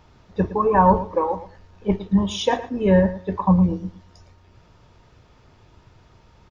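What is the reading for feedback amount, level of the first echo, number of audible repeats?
17%, −14.5 dB, 2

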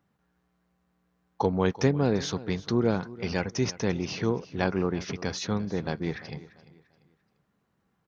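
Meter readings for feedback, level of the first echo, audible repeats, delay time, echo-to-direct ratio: 33%, −18.0 dB, 2, 344 ms, −17.5 dB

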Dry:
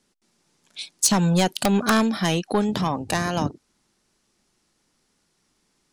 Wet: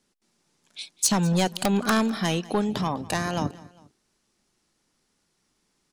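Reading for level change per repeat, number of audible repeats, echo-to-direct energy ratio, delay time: −6.5 dB, 2, −19.5 dB, 201 ms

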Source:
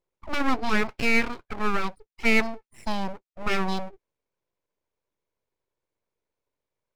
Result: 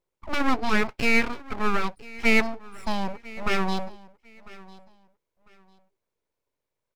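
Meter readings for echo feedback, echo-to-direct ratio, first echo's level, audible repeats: 25%, −20.5 dB, −21.0 dB, 2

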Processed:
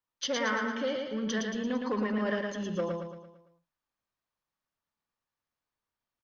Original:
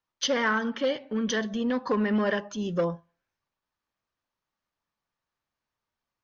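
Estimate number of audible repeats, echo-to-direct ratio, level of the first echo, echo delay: 5, −2.5 dB, −3.5 dB, 113 ms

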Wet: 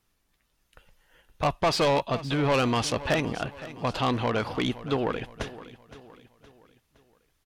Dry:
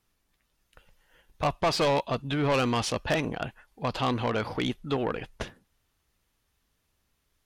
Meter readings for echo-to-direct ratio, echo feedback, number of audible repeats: −15.0 dB, 44%, 3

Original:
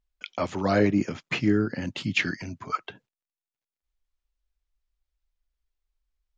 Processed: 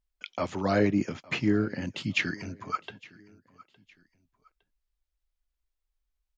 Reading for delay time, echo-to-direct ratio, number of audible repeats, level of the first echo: 861 ms, −22.0 dB, 2, −22.5 dB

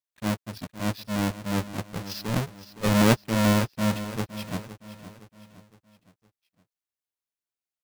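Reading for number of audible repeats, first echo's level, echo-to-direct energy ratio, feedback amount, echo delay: 4, −13.5 dB, −12.5 dB, 44%, 514 ms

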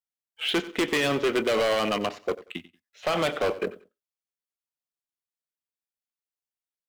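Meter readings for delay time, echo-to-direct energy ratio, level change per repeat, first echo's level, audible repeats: 92 ms, −17.5 dB, −12.5 dB, −17.5 dB, 2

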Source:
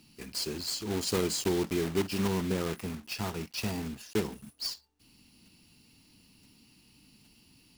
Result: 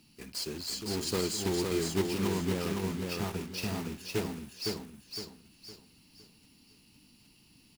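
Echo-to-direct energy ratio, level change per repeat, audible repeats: −3.0 dB, −9.0 dB, 4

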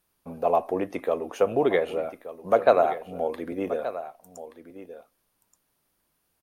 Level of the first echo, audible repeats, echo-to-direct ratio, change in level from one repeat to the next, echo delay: −13.5 dB, 1, −13.5 dB, repeats not evenly spaced, 1,177 ms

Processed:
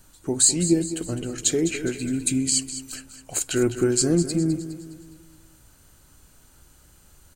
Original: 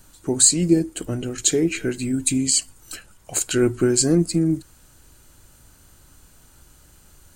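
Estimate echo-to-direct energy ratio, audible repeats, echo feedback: −11.0 dB, 4, 47%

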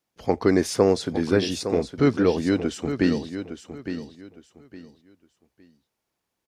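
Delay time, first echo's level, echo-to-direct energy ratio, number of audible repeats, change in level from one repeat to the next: 861 ms, −10.0 dB, −9.5 dB, 3, −12.0 dB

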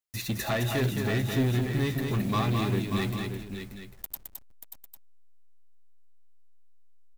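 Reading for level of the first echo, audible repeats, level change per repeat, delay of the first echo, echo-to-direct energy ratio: −5.0 dB, 3, repeats not evenly spaced, 215 ms, −3.0 dB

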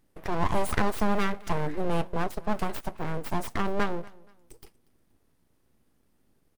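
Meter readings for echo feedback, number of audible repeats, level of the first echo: 31%, 2, −23.0 dB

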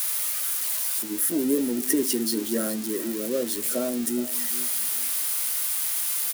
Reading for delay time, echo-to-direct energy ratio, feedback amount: 420 ms, −15.0 dB, 25%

